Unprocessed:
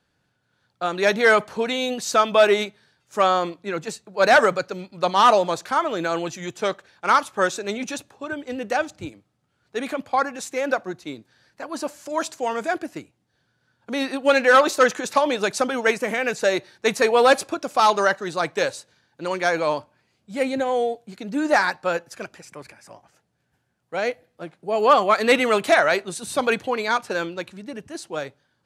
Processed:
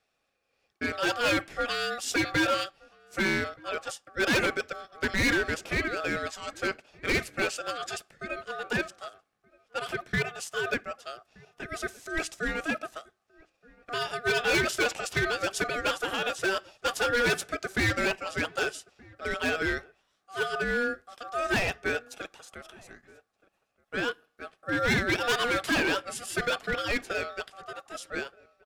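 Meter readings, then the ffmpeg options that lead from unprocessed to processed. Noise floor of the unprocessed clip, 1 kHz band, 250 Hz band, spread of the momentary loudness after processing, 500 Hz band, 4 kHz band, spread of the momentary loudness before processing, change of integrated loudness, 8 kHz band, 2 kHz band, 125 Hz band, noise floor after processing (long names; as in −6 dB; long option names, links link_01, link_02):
−71 dBFS, −12.5 dB, −5.5 dB, 14 LU, −11.0 dB, −3.5 dB, 17 LU, −8.0 dB, −4.5 dB, −3.5 dB, +1.5 dB, −77 dBFS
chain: -filter_complex "[0:a]highpass=140,lowshelf=frequency=190:gain=-8.5,aeval=exprs='val(0)*sin(2*PI*960*n/s)':channel_layout=same,asoftclip=type=hard:threshold=-19.5dB,asplit=2[link_01][link_02];[link_02]adelay=1224,volume=-24dB,highshelf=frequency=4000:gain=-27.6[link_03];[link_01][link_03]amix=inputs=2:normalize=0,volume=-1.5dB"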